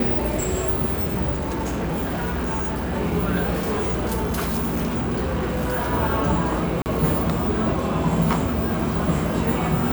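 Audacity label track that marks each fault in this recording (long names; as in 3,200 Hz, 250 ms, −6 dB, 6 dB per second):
1.330000	2.940000	clipping −22 dBFS
3.510000	5.920000	clipping −19.5 dBFS
6.820000	6.860000	drop-out 39 ms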